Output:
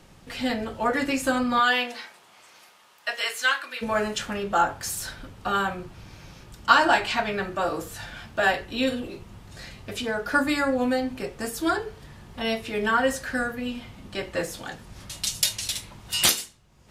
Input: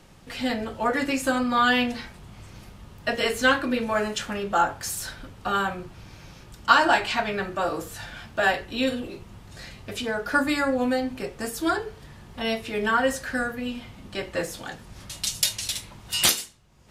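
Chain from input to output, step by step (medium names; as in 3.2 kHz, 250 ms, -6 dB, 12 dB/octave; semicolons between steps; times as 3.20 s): 1.59–3.81 s: high-pass 430 Hz -> 1.4 kHz 12 dB/octave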